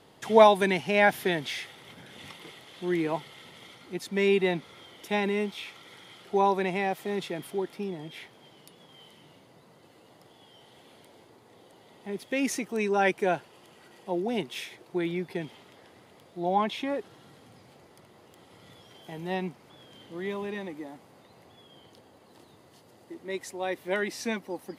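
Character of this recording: noise floor -57 dBFS; spectral tilt -3.5 dB/oct

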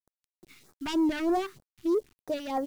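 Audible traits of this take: a quantiser's noise floor 10-bit, dither none; phasing stages 2, 3.2 Hz, lowest notch 540–2800 Hz

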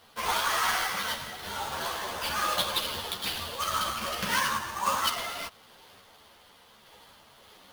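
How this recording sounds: random-step tremolo; aliases and images of a low sample rate 7600 Hz, jitter 20%; a shimmering, thickened sound

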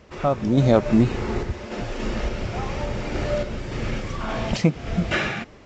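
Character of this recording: random-step tremolo; µ-law

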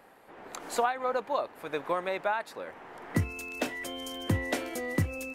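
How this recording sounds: noise floor -56 dBFS; spectral tilt -5.0 dB/oct

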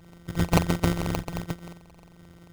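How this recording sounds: a buzz of ramps at a fixed pitch in blocks of 256 samples; phasing stages 2, 1.4 Hz, lowest notch 420–1000 Hz; aliases and images of a low sample rate 1700 Hz, jitter 0%

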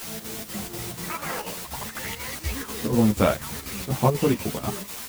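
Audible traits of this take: a quantiser's noise floor 6-bit, dither triangular; chopped level 4.1 Hz, depth 60%, duty 75%; a shimmering, thickened sound

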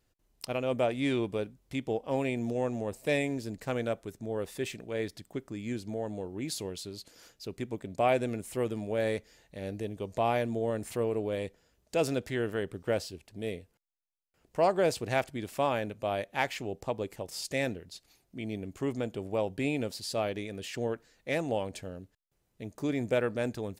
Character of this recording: noise floor -74 dBFS; spectral tilt -5.0 dB/oct

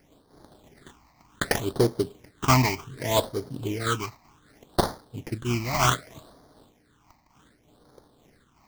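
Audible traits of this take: aliases and images of a low sample rate 2700 Hz, jitter 20%; phasing stages 8, 0.66 Hz, lowest notch 440–2600 Hz; noise-modulated level

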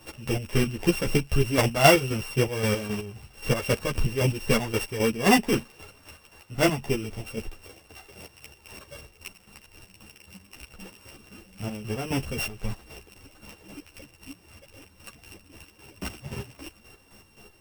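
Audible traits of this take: a buzz of ramps at a fixed pitch in blocks of 16 samples; chopped level 3.8 Hz, depth 60%, duty 40%; a shimmering, thickened sound

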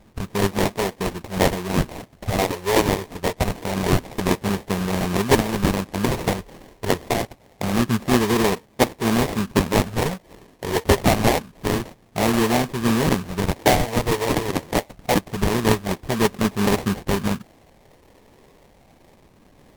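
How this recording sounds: phasing stages 12, 0.26 Hz, lowest notch 230–1300 Hz; aliases and images of a low sample rate 1400 Hz, jitter 20%; MP3

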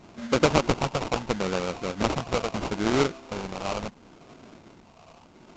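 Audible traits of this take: a buzz of ramps at a fixed pitch in blocks of 16 samples; phasing stages 4, 0.74 Hz, lowest notch 300–3000 Hz; aliases and images of a low sample rate 1800 Hz, jitter 20%; A-law

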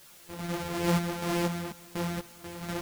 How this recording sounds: a buzz of ramps at a fixed pitch in blocks of 256 samples; random-step tremolo 4.1 Hz, depth 95%; a quantiser's noise floor 10-bit, dither triangular; a shimmering, thickened sound

